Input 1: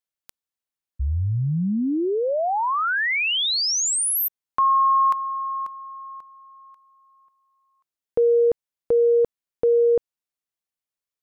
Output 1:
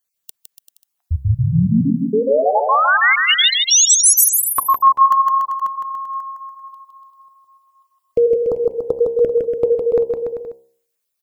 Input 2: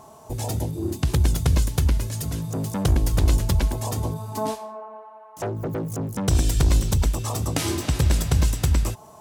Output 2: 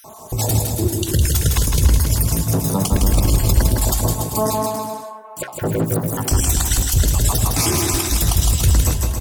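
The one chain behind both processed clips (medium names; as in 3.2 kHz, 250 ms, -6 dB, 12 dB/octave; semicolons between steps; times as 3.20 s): random holes in the spectrogram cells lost 40%; treble shelf 6.8 kHz +10.5 dB; de-hum 66.55 Hz, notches 15; peak limiter -16 dBFS; bouncing-ball echo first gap 160 ms, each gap 0.8×, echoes 5; trim +8 dB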